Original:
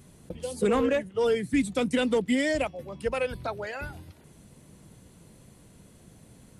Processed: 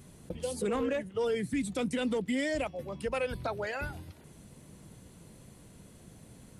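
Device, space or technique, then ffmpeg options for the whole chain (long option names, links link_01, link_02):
stacked limiters: -af "alimiter=limit=-20dB:level=0:latency=1:release=167,alimiter=limit=-23.5dB:level=0:latency=1:release=35"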